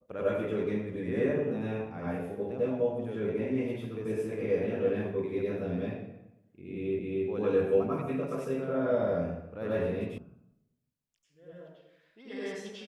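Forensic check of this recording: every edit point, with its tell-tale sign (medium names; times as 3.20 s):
6.99 s: repeat of the last 0.27 s
10.18 s: sound stops dead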